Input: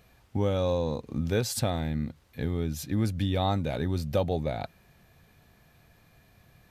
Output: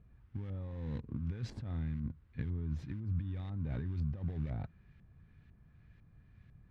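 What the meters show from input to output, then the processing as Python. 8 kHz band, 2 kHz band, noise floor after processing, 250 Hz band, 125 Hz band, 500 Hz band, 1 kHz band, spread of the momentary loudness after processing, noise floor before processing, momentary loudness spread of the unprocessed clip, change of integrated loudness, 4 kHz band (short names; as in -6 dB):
under -25 dB, -15.5 dB, -63 dBFS, -11.0 dB, -6.5 dB, -23.5 dB, -23.0 dB, 6 LU, -61 dBFS, 7 LU, -10.0 dB, under -20 dB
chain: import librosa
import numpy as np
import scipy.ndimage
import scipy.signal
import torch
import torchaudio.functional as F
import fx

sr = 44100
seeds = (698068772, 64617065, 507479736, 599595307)

p1 = fx.sample_hold(x, sr, seeds[0], rate_hz=1300.0, jitter_pct=20)
p2 = x + F.gain(torch.from_numpy(p1), -10.0).numpy()
p3 = fx.over_compress(p2, sr, threshold_db=-30.0, ratio=-1.0)
p4 = fx.filter_lfo_lowpass(p3, sr, shape='saw_up', hz=2.0, low_hz=890.0, high_hz=2100.0, q=1.0)
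p5 = fx.tone_stack(p4, sr, knobs='6-0-2')
y = F.gain(torch.from_numpy(p5), 8.5).numpy()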